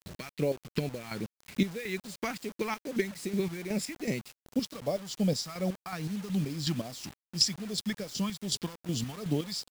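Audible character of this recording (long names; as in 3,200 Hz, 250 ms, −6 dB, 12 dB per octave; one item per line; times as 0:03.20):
chopped level 2.7 Hz, depth 65%, duty 40%
phaser sweep stages 2, 2.5 Hz, lowest notch 500–1,300 Hz
a quantiser's noise floor 8 bits, dither none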